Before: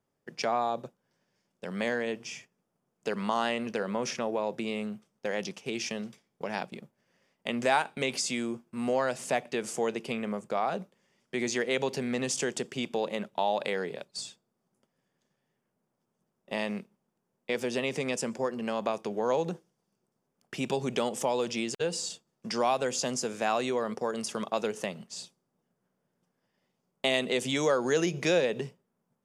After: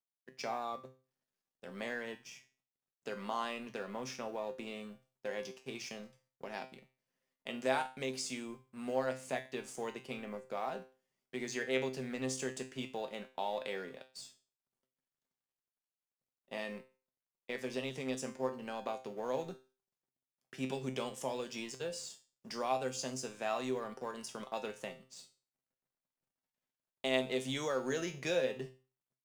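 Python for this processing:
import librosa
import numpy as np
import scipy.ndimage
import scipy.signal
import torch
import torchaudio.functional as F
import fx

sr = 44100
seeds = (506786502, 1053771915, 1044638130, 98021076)

y = fx.law_mismatch(x, sr, coded='A')
y = fx.hum_notches(y, sr, base_hz=60, count=2)
y = fx.comb_fb(y, sr, f0_hz=130.0, decay_s=0.35, harmonics='all', damping=0.0, mix_pct=80)
y = y * 10.0 ** (1.0 / 20.0)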